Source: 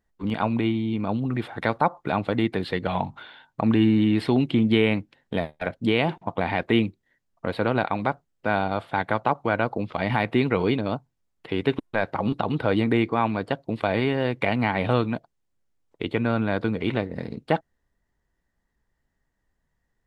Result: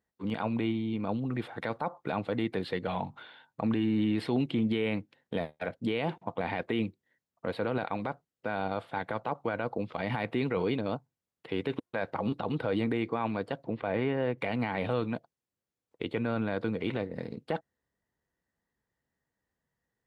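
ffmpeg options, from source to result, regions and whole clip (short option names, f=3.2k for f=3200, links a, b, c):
-filter_complex "[0:a]asettb=1/sr,asplit=3[a][b][c];[a]atrim=end=13.644[d];[b]atrim=start=13.64:end=14.38,asetpts=PTS-STARTPTS,afade=t=in:d=0.004:c=qsin,afade=t=out:st=0.736:d=0.004:c=qsin,acompressor=mode=upward:threshold=-27dB:ratio=2.5:attack=3.2:release=140:knee=2.83:detection=peak,lowpass=2.4k[e];[c]atrim=start=14.376[f];[d][e]acrossfade=d=0.004:c1=hsin:c2=qsin[g];[g][f]acrossfade=d=0.004:c1=qsin:c2=hsin,highpass=92,equalizer=f=490:w=6.8:g=5,alimiter=limit=-14dB:level=0:latency=1:release=15,volume=-6dB"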